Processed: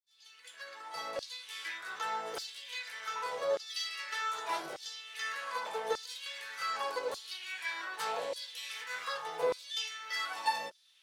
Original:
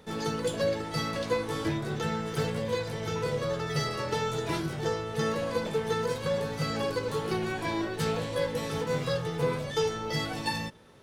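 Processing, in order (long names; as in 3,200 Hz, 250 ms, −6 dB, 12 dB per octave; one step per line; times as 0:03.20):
fade in at the beginning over 1.68 s
auto-filter high-pass saw down 0.84 Hz 540–4,900 Hz
level −4.5 dB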